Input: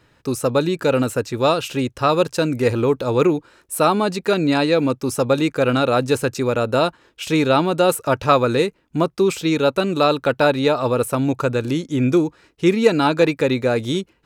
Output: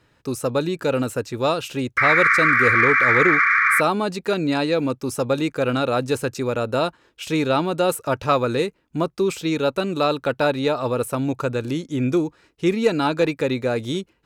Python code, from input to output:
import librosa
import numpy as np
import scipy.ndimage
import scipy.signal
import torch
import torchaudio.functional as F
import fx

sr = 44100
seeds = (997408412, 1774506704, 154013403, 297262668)

y = fx.spec_paint(x, sr, seeds[0], shape='noise', start_s=1.97, length_s=1.84, low_hz=1100.0, high_hz=2400.0, level_db=-13.0)
y = fx.cheby_harmonics(y, sr, harmonics=(5, 6), levels_db=(-33, -43), full_scale_db=1.0)
y = y * 10.0 ** (-4.5 / 20.0)